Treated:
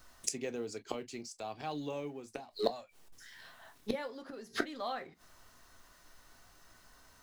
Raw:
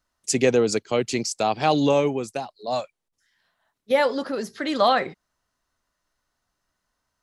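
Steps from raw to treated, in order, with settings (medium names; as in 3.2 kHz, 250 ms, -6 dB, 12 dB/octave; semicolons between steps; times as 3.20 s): companding laws mixed up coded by mu; inverted gate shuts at -22 dBFS, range -26 dB; on a send: reverberation, pre-delay 3 ms, DRR 8.5 dB; on the sum: trim +5.5 dB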